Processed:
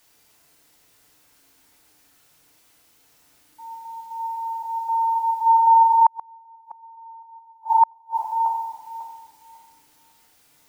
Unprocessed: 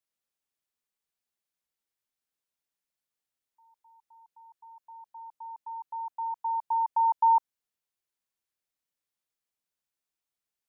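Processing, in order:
feedback delay that plays each chunk backwards 273 ms, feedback 46%, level −4 dB
parametric band 740 Hz +13 dB 0.7 octaves
in parallel at +2 dB: speech leveller within 4 dB 0.5 s
on the sum: bit-depth reduction 10 bits, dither triangular
feedback delay network reverb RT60 1.1 s, low-frequency decay 1.45×, high-frequency decay 0.6×, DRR −2.5 dB
gate with flip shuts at −4 dBFS, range −41 dB
level −2.5 dB

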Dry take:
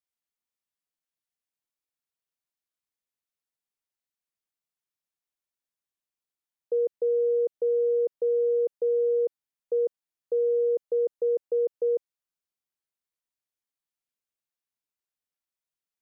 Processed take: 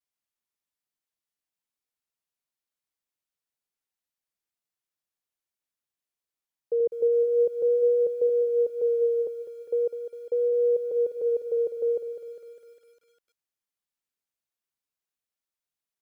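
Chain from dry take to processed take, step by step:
0:06.80–0:08.30: low-shelf EQ 280 Hz +6.5 dB
pitch vibrato 0.41 Hz 24 cents
feedback echo at a low word length 202 ms, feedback 55%, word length 10 bits, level −10 dB

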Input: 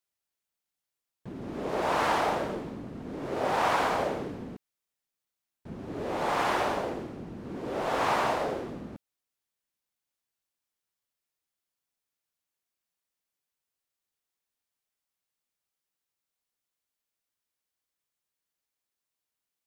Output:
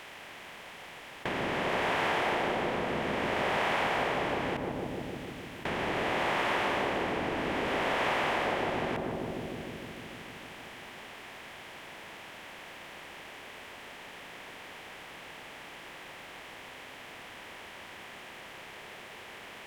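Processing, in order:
compressor on every frequency bin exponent 0.4
flat-topped bell 2,400 Hz +8.5 dB 1.2 octaves
feedback echo with a low-pass in the loop 152 ms, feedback 81%, low-pass 910 Hz, level −3.5 dB
downward compressor 2.5 to 1, threshold −31 dBFS, peak gain reduction 10 dB

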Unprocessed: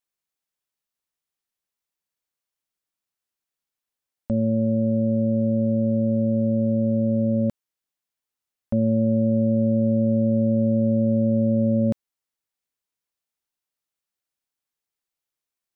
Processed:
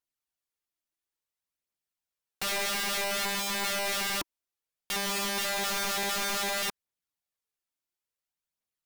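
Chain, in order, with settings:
change of speed 1.78×
phase shifter 0.58 Hz, delay 3.4 ms, feedback 38%
wrap-around overflow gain 24 dB
level −2 dB

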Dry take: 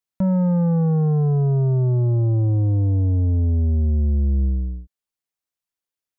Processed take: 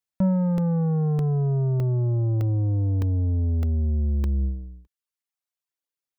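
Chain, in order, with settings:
reverb reduction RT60 0.86 s
regular buffer underruns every 0.61 s, samples 64, zero, from 0:00.58
level −1 dB

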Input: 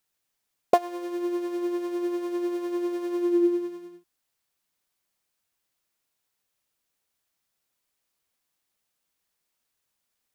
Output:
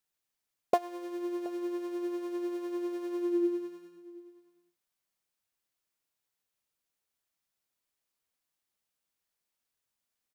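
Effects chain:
single-tap delay 724 ms −20.5 dB
level −6.5 dB

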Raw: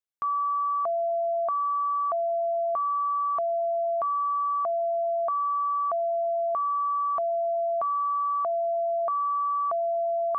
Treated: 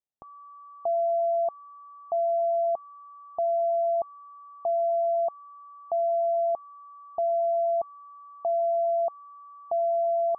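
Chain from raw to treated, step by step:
drawn EQ curve 520 Hz 0 dB, 810 Hz +3 dB, 1,200 Hz −24 dB

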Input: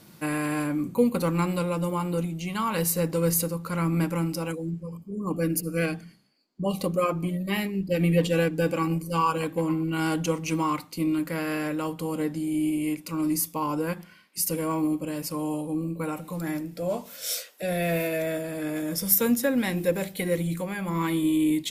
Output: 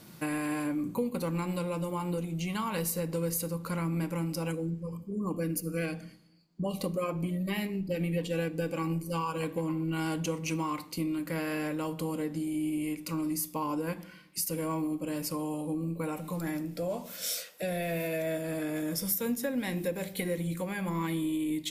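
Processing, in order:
dynamic equaliser 1,300 Hz, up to −5 dB, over −48 dBFS, Q 5.7
downward compressor 3 to 1, threshold −31 dBFS, peak gain reduction 11.5 dB
on a send: convolution reverb RT60 0.65 s, pre-delay 3 ms, DRR 15 dB

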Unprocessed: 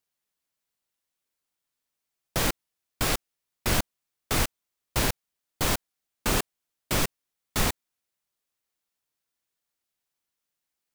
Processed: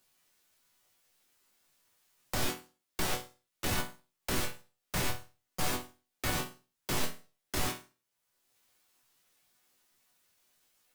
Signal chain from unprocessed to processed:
resonators tuned to a chord E2 fifth, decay 0.3 s
pitch-shifted copies added +3 semitones −2 dB, +7 semitones 0 dB
multiband upward and downward compressor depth 70%

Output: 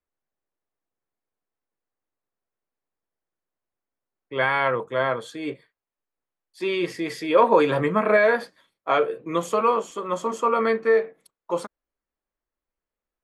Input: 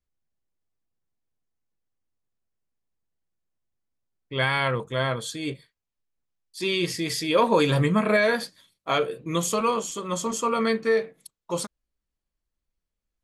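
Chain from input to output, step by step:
three-way crossover with the lows and the highs turned down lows −14 dB, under 290 Hz, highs −16 dB, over 2,200 Hz
level +4.5 dB

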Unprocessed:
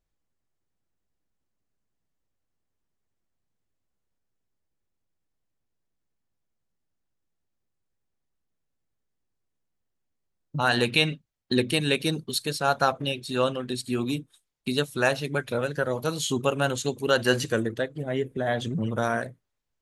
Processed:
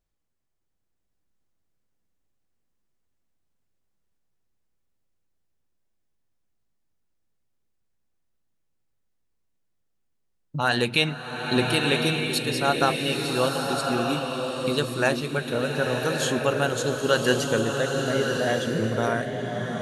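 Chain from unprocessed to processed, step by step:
slow-attack reverb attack 1,190 ms, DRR 1.5 dB

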